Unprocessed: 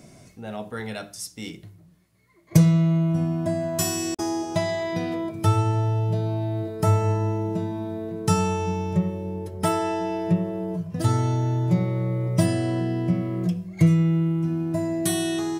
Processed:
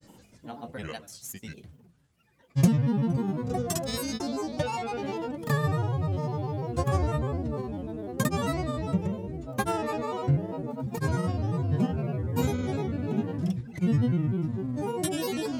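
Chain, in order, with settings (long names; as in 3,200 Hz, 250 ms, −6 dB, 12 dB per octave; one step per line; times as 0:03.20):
granular cloud, pitch spread up and down by 7 semitones
level −3.5 dB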